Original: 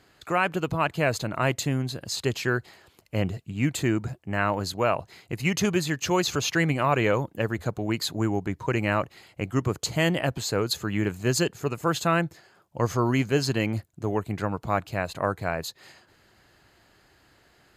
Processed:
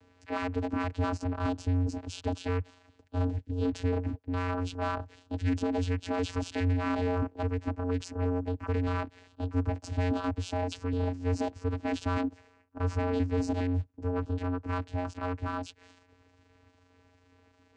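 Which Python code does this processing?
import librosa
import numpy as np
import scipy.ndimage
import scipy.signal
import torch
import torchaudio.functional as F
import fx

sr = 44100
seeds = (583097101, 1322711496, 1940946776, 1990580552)

y = fx.pitch_trill(x, sr, semitones=7.0, every_ms=206)
y = fx.dynamic_eq(y, sr, hz=1000.0, q=1.5, threshold_db=-36.0, ratio=4.0, max_db=4)
y = 10.0 ** (-25.5 / 20.0) * np.tanh(y / 10.0 ** (-25.5 / 20.0))
y = fx.vocoder(y, sr, bands=8, carrier='square', carrier_hz=89.9)
y = y * librosa.db_to_amplitude(1.5)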